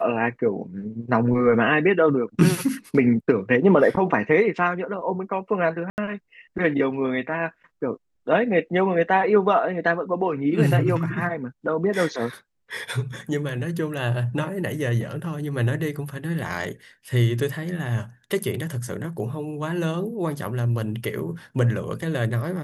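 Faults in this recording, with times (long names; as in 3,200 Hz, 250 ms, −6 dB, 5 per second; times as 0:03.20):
0:05.90–0:05.98: drop-out 79 ms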